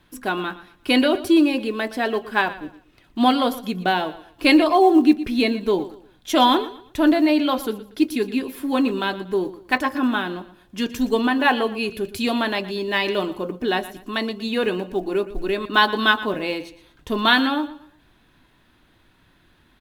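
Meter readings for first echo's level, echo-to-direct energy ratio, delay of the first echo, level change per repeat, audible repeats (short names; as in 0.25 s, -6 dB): -16.0 dB, -15.5 dB, 0.118 s, -10.0 dB, 2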